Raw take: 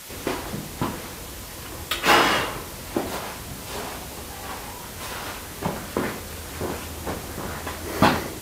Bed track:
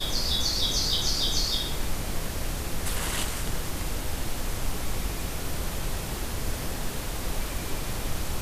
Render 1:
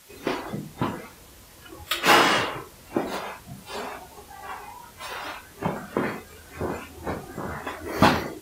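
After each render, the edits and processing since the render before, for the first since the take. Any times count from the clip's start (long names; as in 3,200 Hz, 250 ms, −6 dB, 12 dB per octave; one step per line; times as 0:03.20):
noise reduction from a noise print 12 dB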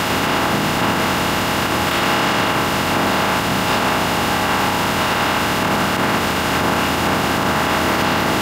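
compressor on every frequency bin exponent 0.2
brickwall limiter −8 dBFS, peak gain reduction 9.5 dB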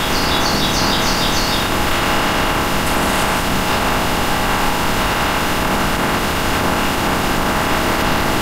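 mix in bed track +5 dB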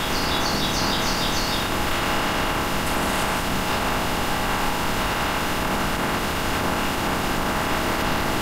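level −6.5 dB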